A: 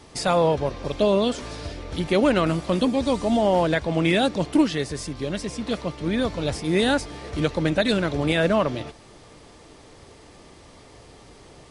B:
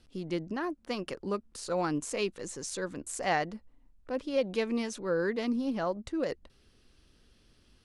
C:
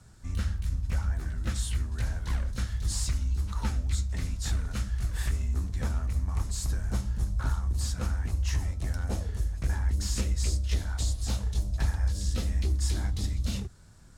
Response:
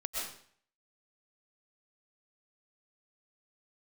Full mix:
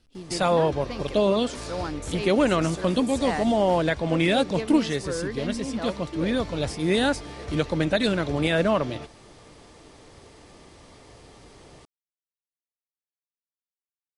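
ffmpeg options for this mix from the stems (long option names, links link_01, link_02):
-filter_complex "[0:a]adelay=150,volume=-1.5dB[link_01];[1:a]volume=-1.5dB[link_02];[link_01][link_02]amix=inputs=2:normalize=0"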